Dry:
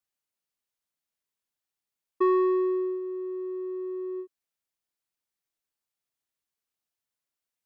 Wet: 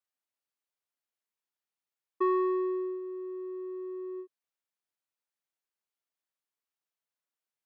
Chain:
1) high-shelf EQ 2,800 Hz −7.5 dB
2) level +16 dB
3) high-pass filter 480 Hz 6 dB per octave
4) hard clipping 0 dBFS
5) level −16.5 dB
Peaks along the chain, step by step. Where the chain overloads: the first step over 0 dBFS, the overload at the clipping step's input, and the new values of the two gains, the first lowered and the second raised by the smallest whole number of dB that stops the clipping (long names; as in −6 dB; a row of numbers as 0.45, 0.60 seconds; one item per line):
−16.5, −0.5, −2.0, −2.0, −18.5 dBFS
no step passes full scale